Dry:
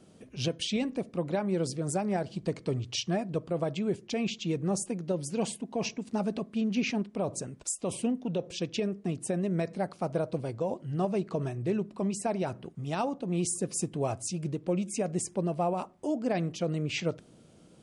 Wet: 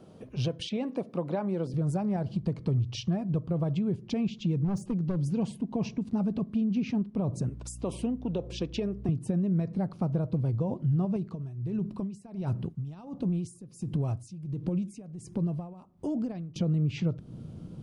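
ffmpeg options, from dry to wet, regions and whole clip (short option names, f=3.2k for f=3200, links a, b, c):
-filter_complex "[0:a]asettb=1/sr,asplit=3[a][b][c];[a]atrim=end=0.694[d];[b]atrim=start=0.69:end=1.74,asetpts=PTS-STARTPTS,afade=t=in:d=0.004:c=qsin,afade=t=out:st=1.046:d=0.004:c=qsin,highpass=230,acrossover=split=2600[e][f];[f]acompressor=threshold=-49dB:ratio=4:attack=1:release=60[g];[e][g]amix=inputs=2:normalize=0[h];[c]atrim=start=1.736[i];[d][h]acrossfade=d=0.004:c1=hsin:c2=qsin[j];[j][i]acrossfade=d=0.004:c1=qsin:c2=hsin,asettb=1/sr,asplit=3[k][l][m];[k]atrim=end=4.644[n];[l]atrim=start=4.64:end=5.26,asetpts=PTS-STARTPTS,afade=t=in:d=0.004:c=qsin,afade=t=out:st=0.616:d=0.004:c=qsin,lowpass=8.3k,asoftclip=type=hard:threshold=-29dB[o];[m]atrim=start=5.256[p];[n][o]acrossfade=d=0.004:c1=hsin:c2=qsin[q];[q][p]acrossfade=d=0.004:c1=qsin:c2=hsin,asettb=1/sr,asplit=3[r][s][t];[r]atrim=end=7.494[u];[s]atrim=start=7.49:end=9.09,asetpts=PTS-STARTPTS,afade=t=in:d=0.004:c=qsin,afade=t=out:st=1.596:d=0.004:c=qsin,highpass=320,aeval=exprs='val(0)+0.00126*(sin(2*PI*60*n/s)+sin(2*PI*2*60*n/s)/2+sin(2*PI*3*60*n/s)/3+sin(2*PI*4*60*n/s)/4+sin(2*PI*5*60*n/s)/5)':c=same[v];[t]atrim=start=9.086[w];[u][v]acrossfade=d=0.004:c1=hsin:c2=qsin[x];[x][w]acrossfade=d=0.004:c1=qsin:c2=hsin,asettb=1/sr,asplit=3[y][z][aa];[y]atrim=end=11.164[ab];[z]atrim=start=11.16:end=16.56,asetpts=PTS-STARTPTS,afade=t=in:d=0.004:c=qsin,afade=t=out:st=5.396:d=0.004:c=qsin,acompressor=threshold=-30dB:ratio=6:attack=3.2:release=140:knee=1:detection=peak,highshelf=f=3.7k:g=7,aeval=exprs='val(0)*pow(10,-22*(0.5-0.5*cos(2*PI*1.4*n/s))/20)':c=same[ac];[aa]atrim=start=16.556[ad];[ab][ac]acrossfade=d=0.004:c1=hsin:c2=qsin[ae];[ae][ad]acrossfade=d=0.004:c1=qsin:c2=hsin,asubboost=boost=6.5:cutoff=210,acompressor=threshold=-33dB:ratio=3,equalizer=f=125:t=o:w=1:g=4,equalizer=f=500:t=o:w=1:g=4,equalizer=f=1k:t=o:w=1:g=5,equalizer=f=2k:t=o:w=1:g=-4,equalizer=f=8k:t=o:w=1:g=-10,volume=2dB"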